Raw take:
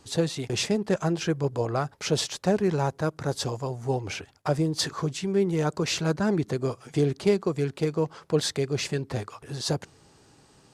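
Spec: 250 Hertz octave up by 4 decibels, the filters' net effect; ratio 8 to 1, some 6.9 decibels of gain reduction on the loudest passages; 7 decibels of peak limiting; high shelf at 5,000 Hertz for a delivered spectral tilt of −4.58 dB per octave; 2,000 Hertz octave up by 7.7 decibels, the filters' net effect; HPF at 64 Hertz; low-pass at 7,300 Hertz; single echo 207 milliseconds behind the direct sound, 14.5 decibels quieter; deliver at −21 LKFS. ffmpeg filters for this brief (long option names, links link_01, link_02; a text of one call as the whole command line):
ffmpeg -i in.wav -af "highpass=64,lowpass=7300,equalizer=frequency=250:width_type=o:gain=6,equalizer=frequency=2000:width_type=o:gain=9,highshelf=frequency=5000:gain=6,acompressor=threshold=-22dB:ratio=8,alimiter=limit=-18.5dB:level=0:latency=1,aecho=1:1:207:0.188,volume=8.5dB" out.wav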